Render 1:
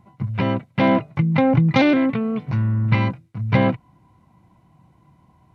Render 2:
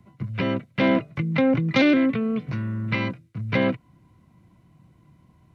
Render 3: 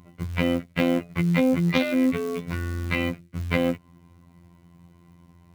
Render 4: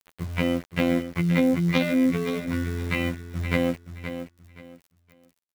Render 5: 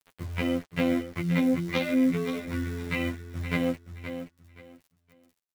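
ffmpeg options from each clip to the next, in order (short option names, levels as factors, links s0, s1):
-filter_complex "[0:a]equalizer=f=850:t=o:w=0.6:g=-11.5,acrossover=split=220|330|980[s0][s1][s2][s3];[s0]acompressor=threshold=0.0316:ratio=6[s4];[s4][s1][s2][s3]amix=inputs=4:normalize=0"
-af "acrusher=bits=6:mode=log:mix=0:aa=0.000001,acompressor=threshold=0.0794:ratio=16,afftfilt=real='hypot(re,im)*cos(PI*b)':imag='0':win_size=2048:overlap=0.75,volume=2.11"
-filter_complex "[0:a]aeval=exprs='val(0)*gte(abs(val(0)),0.0126)':c=same,asplit=2[s0][s1];[s1]aecho=0:1:523|1046|1569:0.316|0.0791|0.0198[s2];[s0][s2]amix=inputs=2:normalize=0,volume=0.891"
-af "flanger=delay=6.6:depth=2.9:regen=-25:speed=1.4:shape=triangular"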